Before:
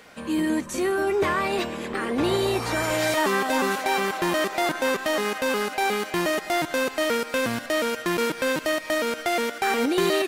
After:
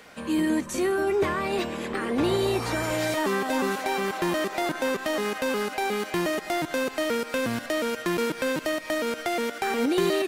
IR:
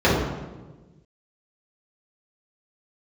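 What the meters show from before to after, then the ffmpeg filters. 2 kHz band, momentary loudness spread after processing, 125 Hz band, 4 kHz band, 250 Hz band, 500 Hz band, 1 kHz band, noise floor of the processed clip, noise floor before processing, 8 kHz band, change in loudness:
-4.0 dB, 4 LU, 0.0 dB, -3.5 dB, -0.5 dB, -1.5 dB, -3.5 dB, -39 dBFS, -38 dBFS, -3.5 dB, -2.5 dB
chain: -filter_complex "[0:a]acrossover=split=470[s0][s1];[s1]acompressor=threshold=0.0316:ratio=2[s2];[s0][s2]amix=inputs=2:normalize=0"

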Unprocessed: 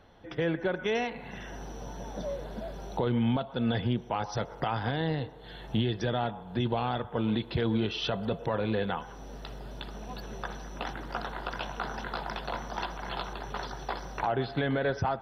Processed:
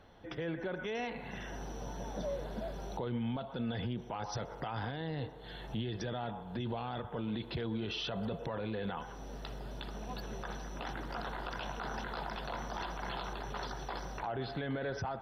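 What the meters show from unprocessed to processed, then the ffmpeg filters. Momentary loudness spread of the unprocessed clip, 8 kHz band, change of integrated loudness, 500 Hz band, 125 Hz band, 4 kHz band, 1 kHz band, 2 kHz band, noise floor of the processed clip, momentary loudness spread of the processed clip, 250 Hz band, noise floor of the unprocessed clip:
13 LU, no reading, -7.0 dB, -7.5 dB, -7.5 dB, -6.0 dB, -6.5 dB, -6.5 dB, -47 dBFS, 7 LU, -7.5 dB, -46 dBFS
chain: -af "alimiter=level_in=1.5:limit=0.0631:level=0:latency=1:release=31,volume=0.668,volume=0.841"

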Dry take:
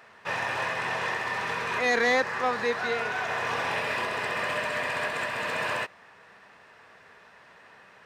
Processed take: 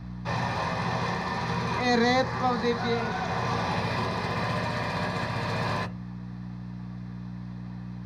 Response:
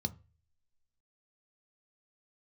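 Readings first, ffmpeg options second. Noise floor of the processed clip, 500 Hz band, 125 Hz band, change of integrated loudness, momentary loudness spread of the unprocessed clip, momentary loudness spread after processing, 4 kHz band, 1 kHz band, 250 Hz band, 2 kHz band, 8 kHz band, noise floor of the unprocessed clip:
-38 dBFS, 0.0 dB, +16.0 dB, -1.0 dB, 6 LU, 14 LU, +0.5 dB, +1.5 dB, +10.0 dB, -5.0 dB, -2.0 dB, -54 dBFS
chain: -filter_complex "[0:a]aeval=exprs='val(0)+0.00501*(sin(2*PI*60*n/s)+sin(2*PI*2*60*n/s)/2+sin(2*PI*3*60*n/s)/3+sin(2*PI*4*60*n/s)/4+sin(2*PI*5*60*n/s)/5)':c=same,asplit=2[s0][s1];[1:a]atrim=start_sample=2205,lowshelf=f=67:g=10[s2];[s1][s2]afir=irnorm=-1:irlink=0,volume=2.24[s3];[s0][s3]amix=inputs=2:normalize=0,volume=0.422"

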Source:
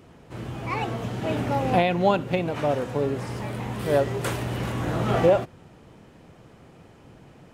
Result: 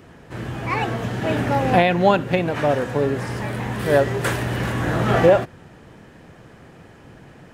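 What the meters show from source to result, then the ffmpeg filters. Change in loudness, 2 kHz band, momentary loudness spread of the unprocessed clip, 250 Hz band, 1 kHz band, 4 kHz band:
+5.0 dB, +8.0 dB, 11 LU, +4.5 dB, +5.0 dB, +5.0 dB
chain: -filter_complex "[0:a]equalizer=f=1700:w=3.8:g=7.5,acrossover=split=3600[s0][s1];[s1]volume=33.5,asoftclip=hard,volume=0.0299[s2];[s0][s2]amix=inputs=2:normalize=0,volume=1.68"

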